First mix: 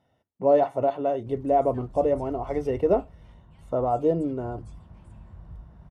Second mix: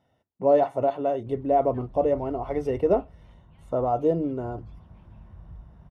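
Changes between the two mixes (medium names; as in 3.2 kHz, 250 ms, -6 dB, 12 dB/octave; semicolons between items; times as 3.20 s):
background: add low-pass 3.9 kHz 24 dB/octave; reverb: off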